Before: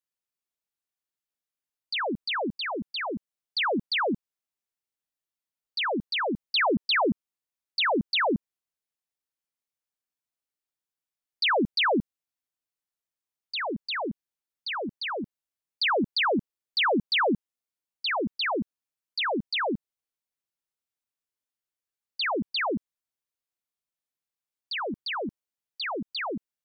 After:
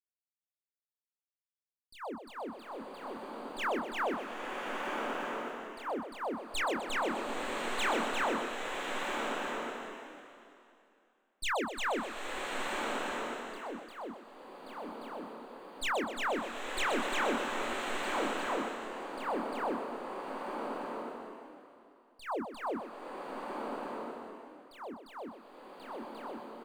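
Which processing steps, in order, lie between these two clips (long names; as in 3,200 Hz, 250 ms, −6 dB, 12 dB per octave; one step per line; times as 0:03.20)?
stylus tracing distortion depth 0.029 ms
dead-zone distortion −47.5 dBFS
noise gate −26 dBFS, range −19 dB
octave-band graphic EQ 125/250/500/1,000/2,000/4,000 Hz +5/+9/+5/+7/−7/−10 dB
downward compressor 4 to 1, threshold −33 dBFS, peak gain reduction 16.5 dB
brickwall limiter −31 dBFS, peak gain reduction 5.5 dB
parametric band 150 Hz −12 dB 1.3 octaves
double-tracking delay 26 ms −4 dB
feedback echo with a high-pass in the loop 125 ms, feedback 43%, level −7 dB
slow-attack reverb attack 1,280 ms, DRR 0 dB
level +2 dB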